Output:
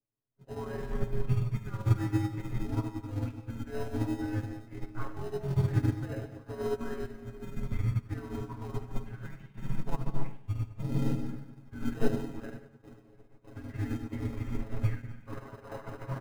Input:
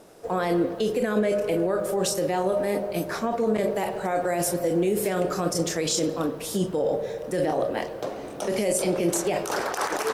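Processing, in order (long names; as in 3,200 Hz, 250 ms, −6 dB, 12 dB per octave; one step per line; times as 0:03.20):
single-sideband voice off tune −300 Hz 180–2,500 Hz
gain on a spectral selection 0:09.28–0:09.55, 260–1,400 Hz −27 dB
time stretch by overlap-add 1.6×, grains 49 ms
in parallel at −7.5 dB: decimation without filtering 39×
on the sum: comb filter 7.3 ms, depth 71%
on a send at −3 dB: convolution reverb RT60 1.8 s, pre-delay 35 ms
on the sum: expander for the loud parts 2.5 to 1, over −41 dBFS
level −3.5 dB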